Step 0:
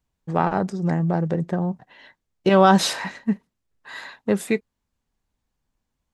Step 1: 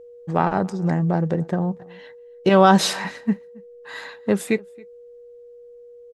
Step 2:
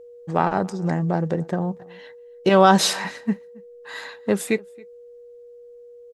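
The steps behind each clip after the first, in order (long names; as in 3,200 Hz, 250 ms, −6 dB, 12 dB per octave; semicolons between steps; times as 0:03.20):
steady tone 480 Hz −42 dBFS; slap from a distant wall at 47 metres, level −25 dB; level +1 dB
bass and treble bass −3 dB, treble +3 dB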